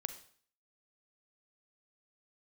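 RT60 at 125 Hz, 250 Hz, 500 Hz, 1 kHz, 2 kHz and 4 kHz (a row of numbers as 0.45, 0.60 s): 0.55, 0.50, 0.50, 0.50, 0.50, 0.50 s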